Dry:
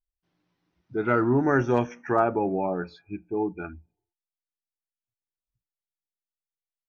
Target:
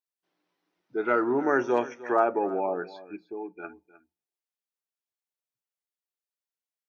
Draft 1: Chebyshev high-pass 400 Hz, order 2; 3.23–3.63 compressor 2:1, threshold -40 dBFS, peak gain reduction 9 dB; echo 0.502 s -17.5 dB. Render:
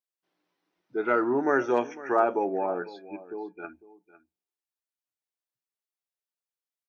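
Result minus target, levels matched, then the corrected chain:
echo 0.195 s late
Chebyshev high-pass 400 Hz, order 2; 3.23–3.63 compressor 2:1, threshold -40 dBFS, peak gain reduction 9 dB; echo 0.307 s -17.5 dB

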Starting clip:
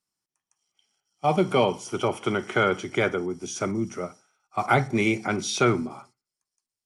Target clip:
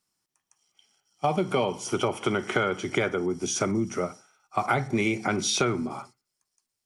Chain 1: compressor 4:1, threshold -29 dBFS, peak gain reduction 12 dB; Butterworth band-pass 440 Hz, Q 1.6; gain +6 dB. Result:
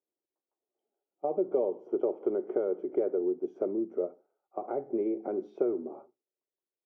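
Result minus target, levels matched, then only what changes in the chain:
500 Hz band +4.0 dB
remove: Butterworth band-pass 440 Hz, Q 1.6

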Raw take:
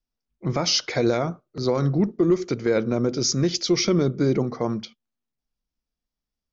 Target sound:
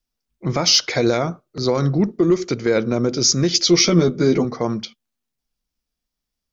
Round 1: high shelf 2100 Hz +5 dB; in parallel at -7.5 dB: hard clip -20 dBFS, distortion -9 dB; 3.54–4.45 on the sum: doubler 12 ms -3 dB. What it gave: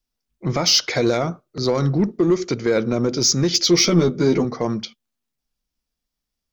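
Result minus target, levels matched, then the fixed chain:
hard clip: distortion +21 dB
high shelf 2100 Hz +5 dB; in parallel at -7.5 dB: hard clip -11 dBFS, distortion -30 dB; 3.54–4.45 on the sum: doubler 12 ms -3 dB

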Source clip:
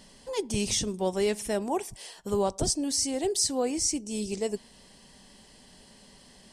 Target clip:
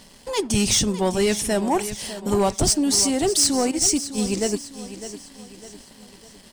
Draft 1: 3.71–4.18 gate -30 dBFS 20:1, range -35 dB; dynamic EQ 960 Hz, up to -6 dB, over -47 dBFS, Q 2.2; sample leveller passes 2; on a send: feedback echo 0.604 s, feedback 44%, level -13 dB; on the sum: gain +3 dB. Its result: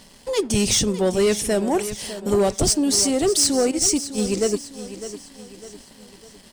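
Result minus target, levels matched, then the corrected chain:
1000 Hz band -3.5 dB
3.71–4.18 gate -30 dBFS 20:1, range -35 dB; dynamic EQ 480 Hz, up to -6 dB, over -47 dBFS, Q 2.2; sample leveller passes 2; on a send: feedback echo 0.604 s, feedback 44%, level -13 dB; on the sum: gain +3 dB

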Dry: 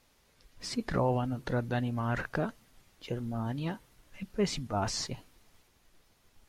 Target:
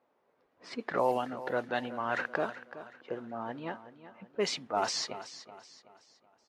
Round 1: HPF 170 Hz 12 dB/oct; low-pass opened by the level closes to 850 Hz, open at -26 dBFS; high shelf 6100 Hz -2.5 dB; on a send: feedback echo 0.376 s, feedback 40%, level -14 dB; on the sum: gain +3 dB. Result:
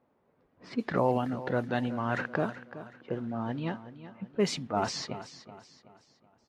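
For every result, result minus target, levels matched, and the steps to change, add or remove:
125 Hz band +11.5 dB; 8000 Hz band -4.0 dB
change: HPF 410 Hz 12 dB/oct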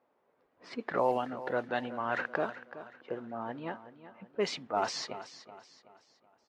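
8000 Hz band -5.0 dB
change: high shelf 6100 Hz +8.5 dB

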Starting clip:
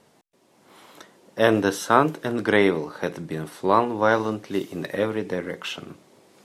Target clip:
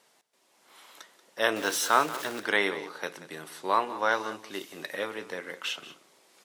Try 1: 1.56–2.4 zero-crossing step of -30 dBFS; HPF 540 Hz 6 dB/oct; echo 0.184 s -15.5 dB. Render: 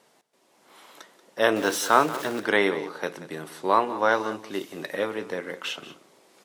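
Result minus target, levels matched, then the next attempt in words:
500 Hz band +2.5 dB
1.56–2.4 zero-crossing step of -30 dBFS; HPF 1500 Hz 6 dB/oct; echo 0.184 s -15.5 dB

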